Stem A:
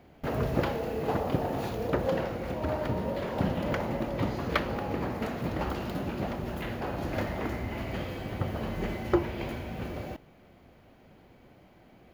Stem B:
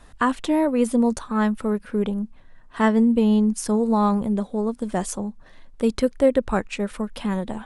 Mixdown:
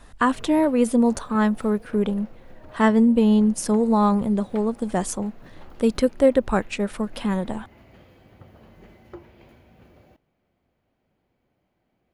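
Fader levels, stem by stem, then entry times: -16.5 dB, +1.0 dB; 0.00 s, 0.00 s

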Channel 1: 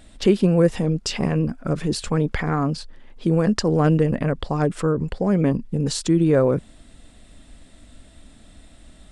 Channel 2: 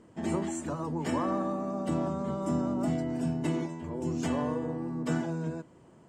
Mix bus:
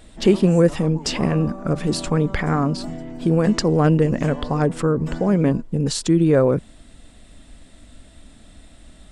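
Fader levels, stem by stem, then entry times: +1.5 dB, -2.0 dB; 0.00 s, 0.00 s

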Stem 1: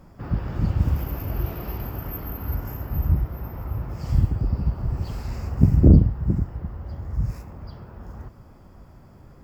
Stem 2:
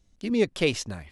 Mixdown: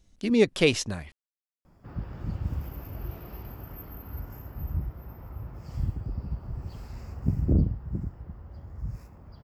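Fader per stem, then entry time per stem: -10.0 dB, +2.5 dB; 1.65 s, 0.00 s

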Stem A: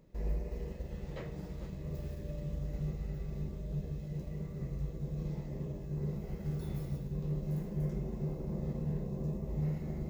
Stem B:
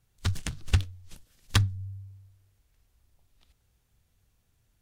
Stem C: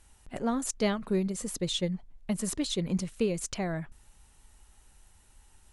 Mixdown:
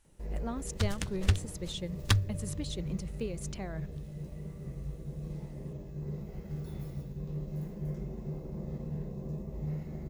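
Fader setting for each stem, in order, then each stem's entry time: -2.0 dB, -2.5 dB, -8.5 dB; 0.05 s, 0.55 s, 0.00 s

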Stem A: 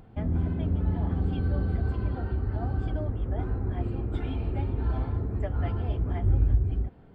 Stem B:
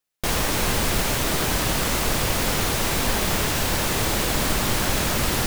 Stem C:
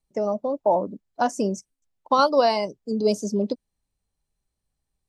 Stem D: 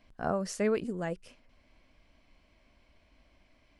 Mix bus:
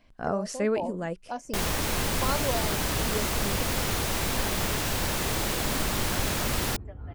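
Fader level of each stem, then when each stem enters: -12.0 dB, -5.5 dB, -12.5 dB, +2.0 dB; 1.45 s, 1.30 s, 0.10 s, 0.00 s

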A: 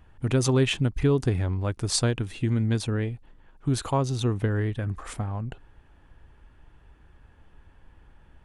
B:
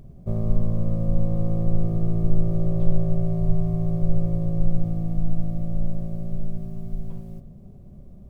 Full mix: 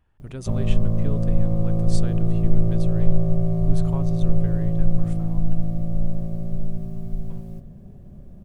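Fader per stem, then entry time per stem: -12.5 dB, +2.0 dB; 0.00 s, 0.20 s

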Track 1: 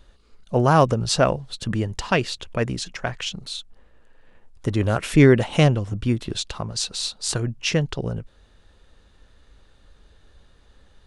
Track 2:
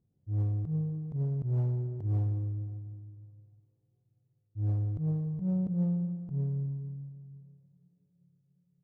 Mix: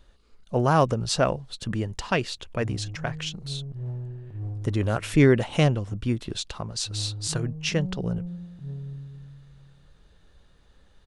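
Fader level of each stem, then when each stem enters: -4.0 dB, -4.0 dB; 0.00 s, 2.30 s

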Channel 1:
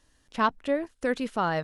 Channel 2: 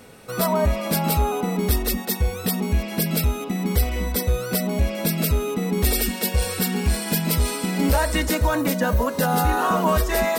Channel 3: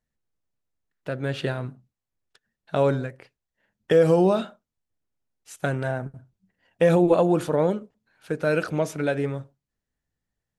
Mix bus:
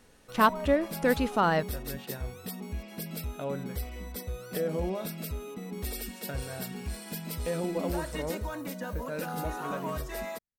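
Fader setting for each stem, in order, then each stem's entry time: +2.0 dB, -15.5 dB, -14.0 dB; 0.00 s, 0.00 s, 0.65 s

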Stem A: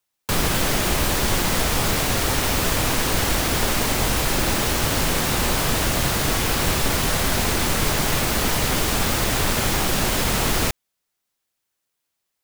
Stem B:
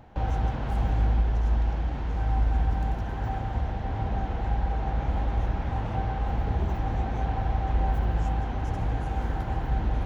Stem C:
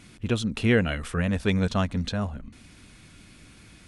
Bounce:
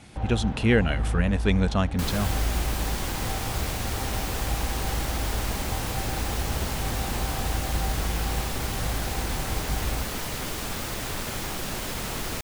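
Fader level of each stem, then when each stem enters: -10.5 dB, -3.5 dB, +0.5 dB; 1.70 s, 0.00 s, 0.00 s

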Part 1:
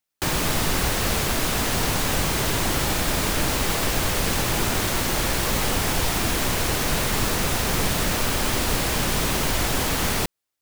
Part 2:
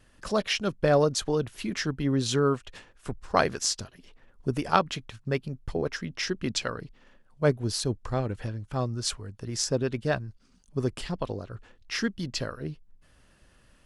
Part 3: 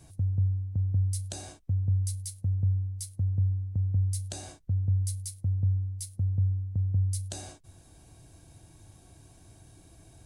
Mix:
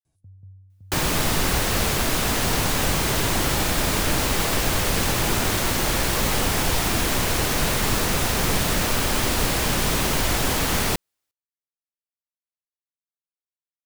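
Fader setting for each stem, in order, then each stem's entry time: +1.0 dB, mute, -19.5 dB; 0.70 s, mute, 0.05 s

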